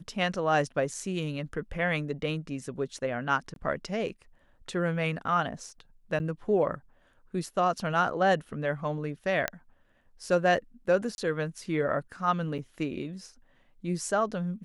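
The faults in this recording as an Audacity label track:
3.540000	3.560000	gap 22 ms
6.190000	6.200000	gap 9.6 ms
9.480000	9.480000	pop -13 dBFS
11.150000	11.180000	gap 31 ms
12.580000	12.590000	gap 6.3 ms

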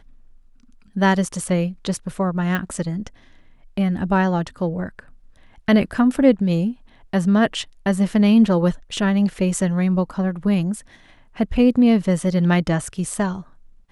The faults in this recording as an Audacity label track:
2.550000	2.550000	pop -11 dBFS

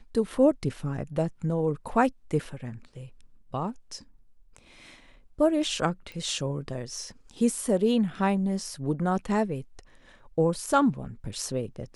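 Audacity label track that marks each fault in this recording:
6.120000	6.120000	pop

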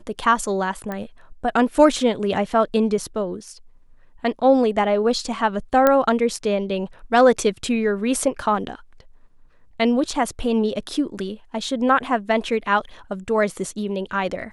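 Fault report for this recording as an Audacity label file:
0.920000	0.920000	pop -16 dBFS
5.870000	5.870000	pop -4 dBFS

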